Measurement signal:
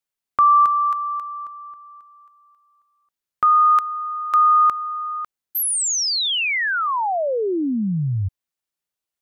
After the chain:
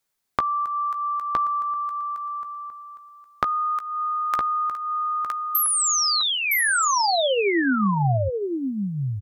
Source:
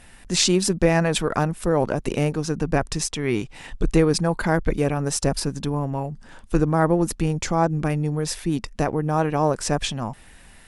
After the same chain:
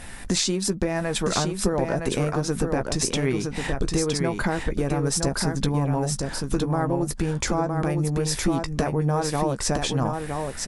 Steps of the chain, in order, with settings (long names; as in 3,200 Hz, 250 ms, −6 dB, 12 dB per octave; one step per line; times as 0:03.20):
downward compressor 10 to 1, threshold −30 dBFS
parametric band 2,800 Hz −4.5 dB 0.33 octaves
double-tracking delay 15 ms −11 dB
on a send: single-tap delay 964 ms −4.5 dB
on the sum: level +9 dB